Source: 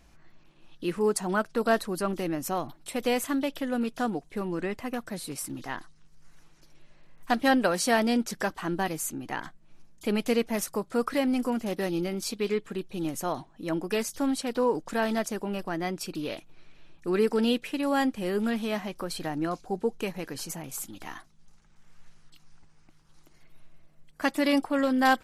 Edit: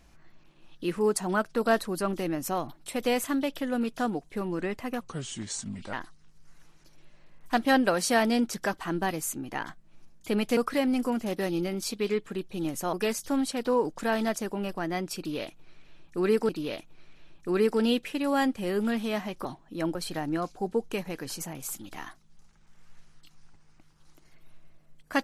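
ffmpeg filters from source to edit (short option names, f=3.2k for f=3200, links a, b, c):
-filter_complex "[0:a]asplit=8[a][b][c][d][e][f][g][h];[a]atrim=end=5.014[i];[b]atrim=start=5.01:end=5.7,asetpts=PTS-STARTPTS,asetrate=33075,aresample=44100[j];[c]atrim=start=5.696:end=10.342[k];[d]atrim=start=10.968:end=13.332[l];[e]atrim=start=13.828:end=17.392[m];[f]atrim=start=16.078:end=19.042[n];[g]atrim=start=13.328:end=13.832[o];[h]atrim=start=19.038[p];[i][j]acrossfade=d=0.004:c1=hsin:c2=hsin[q];[q][k]acrossfade=d=0.004:c1=hsin:c2=hsin[r];[r][l]acrossfade=d=0.004:c1=hsin:c2=hsin[s];[s][m]acrossfade=d=0.004:c1=hsin:c2=hsin[t];[t][n]acrossfade=d=0.004:c1=hsin:c2=hsin[u];[u][o]acrossfade=d=0.004:c1=hsin:c2=hsin[v];[v][p]acrossfade=d=0.004:c1=hsin:c2=hsin"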